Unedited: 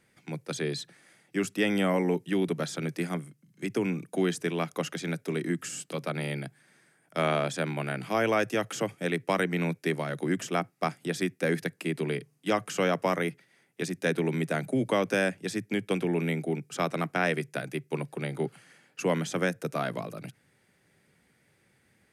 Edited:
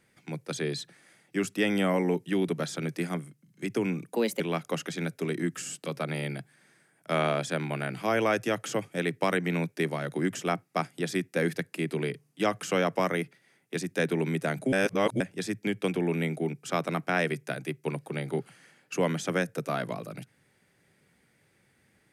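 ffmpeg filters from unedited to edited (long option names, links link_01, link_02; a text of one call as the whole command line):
ffmpeg -i in.wav -filter_complex "[0:a]asplit=5[link_01][link_02][link_03][link_04][link_05];[link_01]atrim=end=4.144[link_06];[link_02]atrim=start=4.14:end=4.47,asetpts=PTS-STARTPTS,asetrate=55125,aresample=44100,atrim=end_sample=11642,asetpts=PTS-STARTPTS[link_07];[link_03]atrim=start=4.466:end=14.792[link_08];[link_04]atrim=start=14.788:end=15.272,asetpts=PTS-STARTPTS,areverse[link_09];[link_05]atrim=start=15.268[link_10];[link_06][link_07]acrossfade=duration=0.004:curve1=hsin:curve2=hsin[link_11];[link_11][link_08]acrossfade=duration=0.004:curve1=hsin:curve2=hsin[link_12];[link_12][link_09]acrossfade=duration=0.004:curve1=hsin:curve2=hsin[link_13];[link_13][link_10]acrossfade=duration=0.004:curve1=hsin:curve2=hsin" out.wav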